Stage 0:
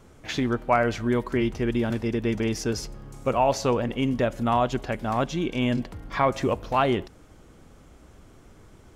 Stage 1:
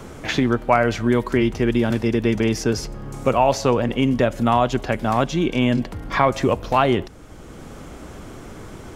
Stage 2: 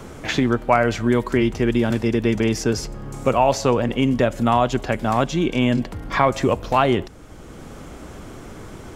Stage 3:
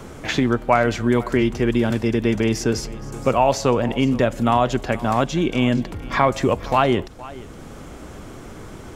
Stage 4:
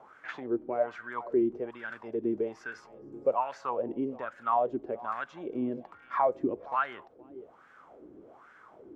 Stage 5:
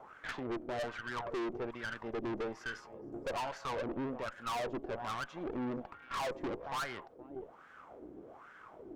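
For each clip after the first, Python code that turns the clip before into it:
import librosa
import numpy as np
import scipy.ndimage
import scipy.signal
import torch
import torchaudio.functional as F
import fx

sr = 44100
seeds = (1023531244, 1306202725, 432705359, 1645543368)

y1 = fx.band_squash(x, sr, depth_pct=40)
y1 = y1 * librosa.db_to_amplitude(5.5)
y2 = fx.dynamic_eq(y1, sr, hz=7500.0, q=4.9, threshold_db=-56.0, ratio=4.0, max_db=4)
y3 = y2 + 10.0 ** (-19.0 / 20.0) * np.pad(y2, (int(469 * sr / 1000.0), 0))[:len(y2)]
y4 = fx.filter_lfo_bandpass(y3, sr, shape='sine', hz=1.2, low_hz=310.0, high_hz=1600.0, q=5.1)
y4 = y4 * librosa.db_to_amplitude(-3.0)
y5 = fx.tube_stage(y4, sr, drive_db=39.0, bias=0.7)
y5 = y5 * librosa.db_to_amplitude(4.5)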